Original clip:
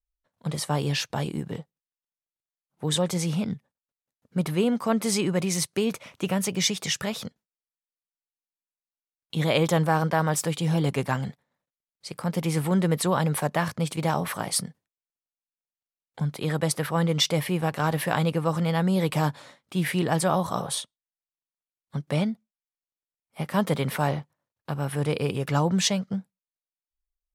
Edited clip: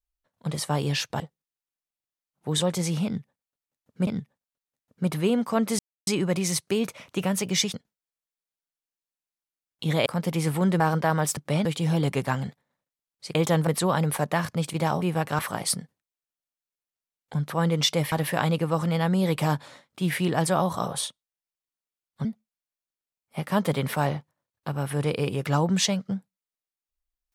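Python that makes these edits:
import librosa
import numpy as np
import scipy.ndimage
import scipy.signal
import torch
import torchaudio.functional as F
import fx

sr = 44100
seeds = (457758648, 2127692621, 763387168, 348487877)

y = fx.edit(x, sr, fx.cut(start_s=1.2, length_s=0.36),
    fx.repeat(start_s=3.41, length_s=1.02, count=2),
    fx.insert_silence(at_s=5.13, length_s=0.28),
    fx.cut(start_s=6.8, length_s=0.45),
    fx.swap(start_s=9.57, length_s=0.32, other_s=12.16, other_length_s=0.74),
    fx.cut(start_s=16.36, length_s=0.51),
    fx.move(start_s=17.49, length_s=0.37, to_s=14.25),
    fx.move(start_s=21.99, length_s=0.28, to_s=10.46), tone=tone)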